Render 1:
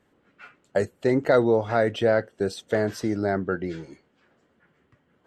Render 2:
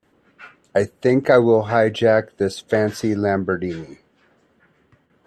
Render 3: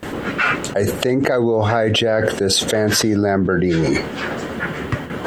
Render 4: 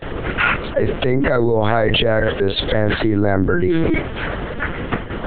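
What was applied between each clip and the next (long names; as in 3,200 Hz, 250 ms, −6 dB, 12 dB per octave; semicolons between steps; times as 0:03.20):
noise gate with hold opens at −58 dBFS; level +5.5 dB
envelope flattener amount 100%; level −6 dB
linear-prediction vocoder at 8 kHz pitch kept; level +1 dB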